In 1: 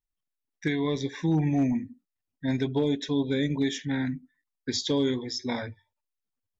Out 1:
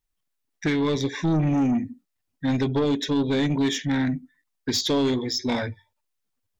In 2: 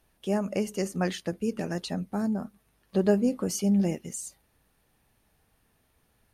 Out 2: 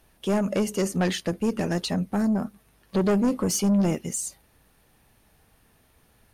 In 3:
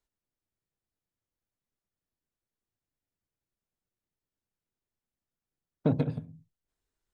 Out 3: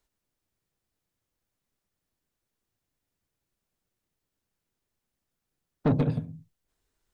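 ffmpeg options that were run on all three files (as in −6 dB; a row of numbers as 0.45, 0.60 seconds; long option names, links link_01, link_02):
-af "asoftclip=type=tanh:threshold=-25dB,volume=7.5dB"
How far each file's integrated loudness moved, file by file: +4.0, +3.5, +3.0 LU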